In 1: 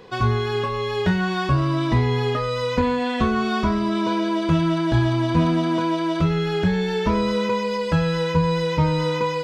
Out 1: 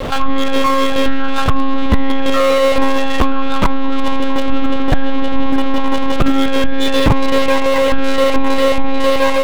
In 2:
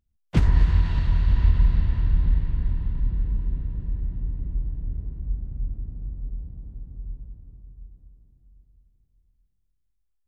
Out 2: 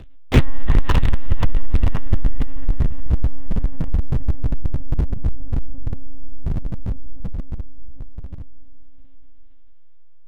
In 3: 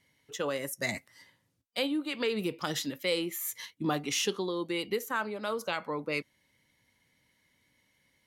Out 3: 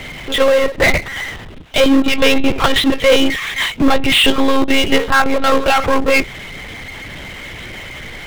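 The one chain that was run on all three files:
one-pitch LPC vocoder at 8 kHz 270 Hz
power curve on the samples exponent 0.5
normalise the peak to −2 dBFS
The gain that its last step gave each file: +6.0, +3.5, +14.5 decibels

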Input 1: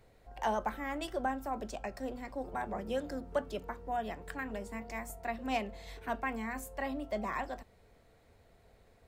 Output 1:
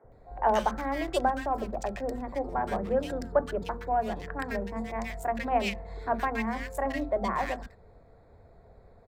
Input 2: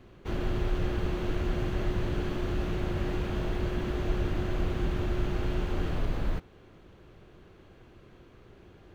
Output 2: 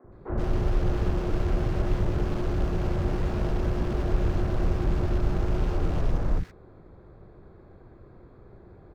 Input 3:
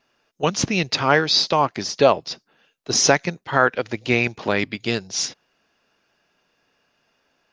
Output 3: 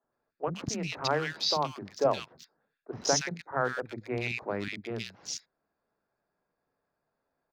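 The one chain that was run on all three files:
adaptive Wiener filter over 15 samples
three-band delay without the direct sound mids, lows, highs 40/120 ms, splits 270/1,700 Hz
normalise the peak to −12 dBFS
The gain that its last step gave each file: +9.0, +5.0, −10.0 decibels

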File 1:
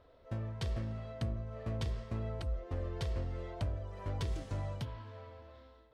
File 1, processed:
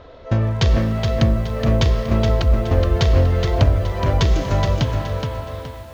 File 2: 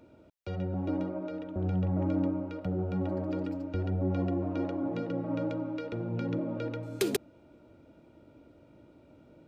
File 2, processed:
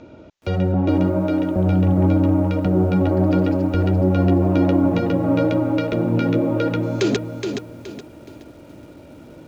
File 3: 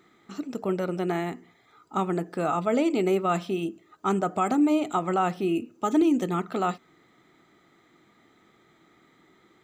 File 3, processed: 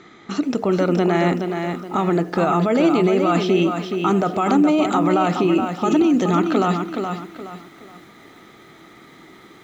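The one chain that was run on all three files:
brickwall limiter −24.5 dBFS
elliptic low-pass filter 6,800 Hz, stop band 40 dB
feedback echo at a low word length 421 ms, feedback 35%, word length 11 bits, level −6 dB
loudness normalisation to −19 LKFS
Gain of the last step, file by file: +21.5, +15.0, +15.0 decibels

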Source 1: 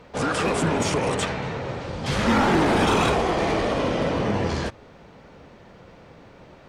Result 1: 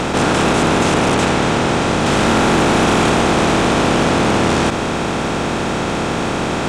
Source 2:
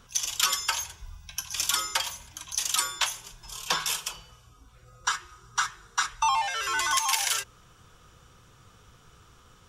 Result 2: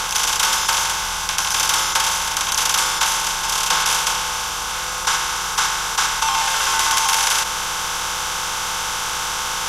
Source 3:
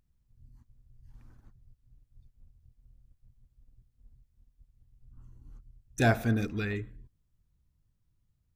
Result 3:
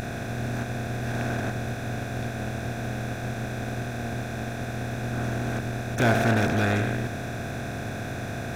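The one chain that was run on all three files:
compressor on every frequency bin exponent 0.2
highs frequency-modulated by the lows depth 0.18 ms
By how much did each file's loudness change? +7.5, +9.0, +0.5 LU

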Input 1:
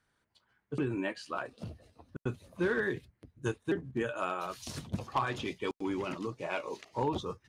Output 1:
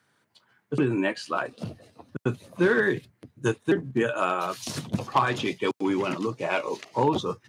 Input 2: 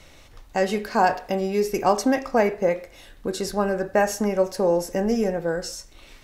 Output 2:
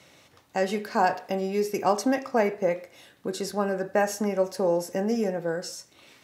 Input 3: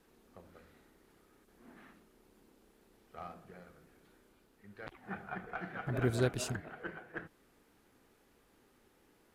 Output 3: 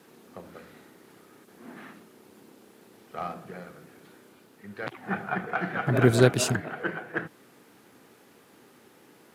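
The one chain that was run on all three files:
high-pass filter 110 Hz 24 dB per octave
loudness normalisation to −27 LKFS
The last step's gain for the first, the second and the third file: +9.0, −3.5, +12.5 decibels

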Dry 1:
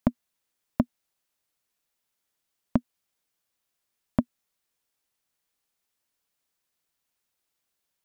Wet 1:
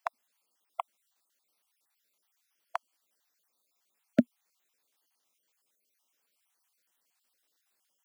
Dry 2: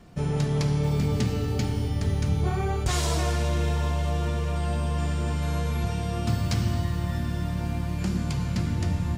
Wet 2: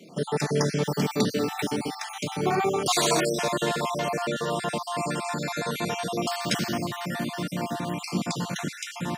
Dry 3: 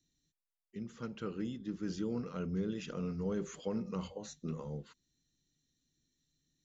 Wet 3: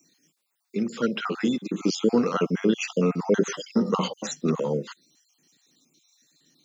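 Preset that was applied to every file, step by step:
time-frequency cells dropped at random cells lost 42%
Bessel high-pass filter 270 Hz, order 6
normalise the peak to −9 dBFS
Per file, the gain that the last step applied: +5.5, +8.5, +21.0 decibels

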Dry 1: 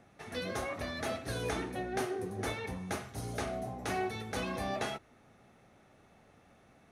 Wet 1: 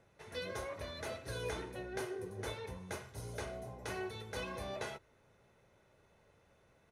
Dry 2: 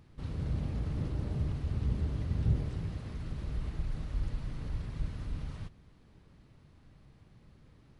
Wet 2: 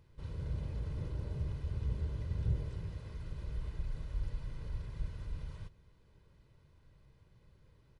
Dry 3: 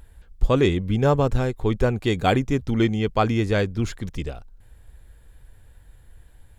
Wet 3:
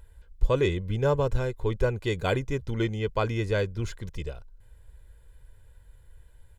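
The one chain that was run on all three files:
comb filter 2 ms, depth 53%
level −6.5 dB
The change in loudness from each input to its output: −6.0, −4.5, −6.0 LU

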